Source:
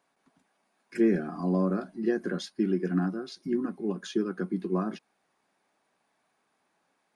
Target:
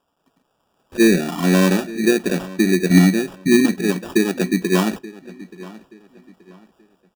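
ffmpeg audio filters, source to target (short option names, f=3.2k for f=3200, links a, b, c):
-filter_complex "[0:a]asettb=1/sr,asplit=3[a][b][c];[a]atrim=end=2.904[d];[b]atrim=start=2.9:end=3.81,asetpts=PTS-STARTPTS,afade=t=in:d=0.004:c=qsin,afade=t=out:st=0.906:d=0.004:c=qsin,tiltshelf=f=740:g=7[e];[c]atrim=start=3.806[f];[d][e]acrossfade=d=0.004:c1=hsin:c2=qsin[g];[g][f]acrossfade=d=0.004:c1=qsin:c2=hsin,acrossover=split=1200[h][i];[i]alimiter=level_in=12.5dB:limit=-24dB:level=0:latency=1:release=241,volume=-12.5dB[j];[h][j]amix=inputs=2:normalize=0,dynaudnorm=f=340:g=5:m=9dB,asplit=2[k][l];[l]asoftclip=type=hard:threshold=-11.5dB,volume=-8dB[m];[k][m]amix=inputs=2:normalize=0,acrusher=samples=21:mix=1:aa=0.000001,asplit=2[n][o];[o]adelay=878,lowpass=f=4.2k:p=1,volume=-18.5dB,asplit=2[p][q];[q]adelay=878,lowpass=f=4.2k:p=1,volume=0.33,asplit=2[r][s];[s]adelay=878,lowpass=f=4.2k:p=1,volume=0.33[t];[n][p][r][t]amix=inputs=4:normalize=0"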